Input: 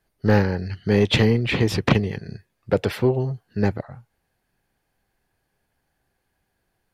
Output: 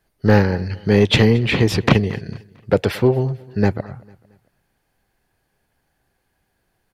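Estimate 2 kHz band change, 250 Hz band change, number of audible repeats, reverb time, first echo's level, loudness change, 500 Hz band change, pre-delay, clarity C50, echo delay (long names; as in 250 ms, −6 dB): +4.0 dB, +4.0 dB, 2, no reverb audible, −23.0 dB, +4.0 dB, +4.0 dB, no reverb audible, no reverb audible, 225 ms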